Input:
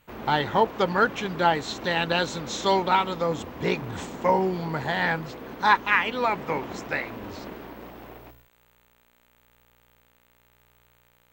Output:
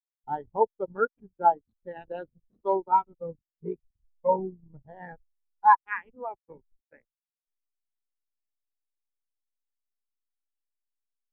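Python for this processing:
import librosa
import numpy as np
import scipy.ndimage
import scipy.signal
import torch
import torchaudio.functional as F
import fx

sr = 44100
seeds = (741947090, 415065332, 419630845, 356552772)

y = fx.backlash(x, sr, play_db=-21.0)
y = fx.spectral_expand(y, sr, expansion=2.5)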